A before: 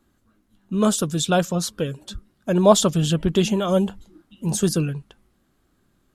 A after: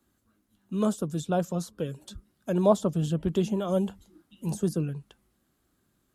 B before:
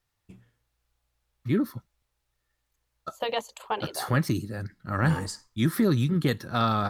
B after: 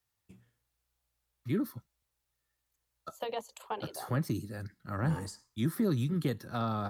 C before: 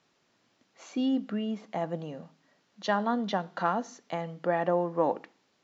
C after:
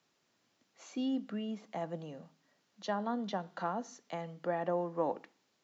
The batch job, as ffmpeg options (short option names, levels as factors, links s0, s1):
-filter_complex "[0:a]highpass=43,highshelf=f=6400:g=8,acrossover=split=190|1100[s0][s1][s2];[s2]acompressor=threshold=0.0126:ratio=4[s3];[s0][s1][s3]amix=inputs=3:normalize=0,volume=0.473"